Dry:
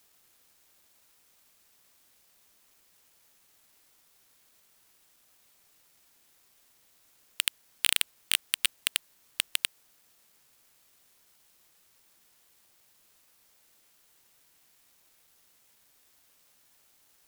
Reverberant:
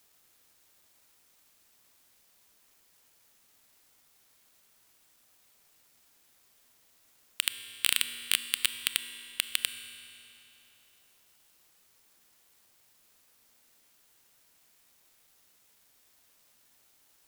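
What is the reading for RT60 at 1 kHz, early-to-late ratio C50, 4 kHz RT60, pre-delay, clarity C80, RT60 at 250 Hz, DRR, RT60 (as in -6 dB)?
3.0 s, 10.5 dB, 2.8 s, 24 ms, 11.0 dB, 3.0 s, 10.0 dB, 3.0 s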